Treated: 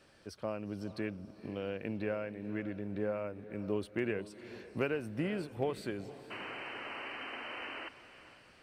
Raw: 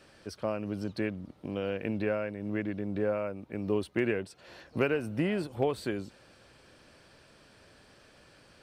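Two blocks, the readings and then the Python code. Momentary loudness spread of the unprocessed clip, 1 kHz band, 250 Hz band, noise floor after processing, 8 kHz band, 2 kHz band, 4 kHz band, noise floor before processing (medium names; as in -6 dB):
9 LU, -3.0 dB, -5.0 dB, -60 dBFS, -5.5 dB, -2.5 dB, -0.5 dB, -59 dBFS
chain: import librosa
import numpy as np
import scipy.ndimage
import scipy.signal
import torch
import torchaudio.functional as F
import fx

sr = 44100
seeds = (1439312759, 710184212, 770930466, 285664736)

y = fx.spec_paint(x, sr, seeds[0], shape='noise', start_s=6.3, length_s=1.59, low_hz=230.0, high_hz=3100.0, level_db=-38.0)
y = fx.echo_diffused(y, sr, ms=475, feedback_pct=41, wet_db=-14.5)
y = y * 10.0 ** (-5.5 / 20.0)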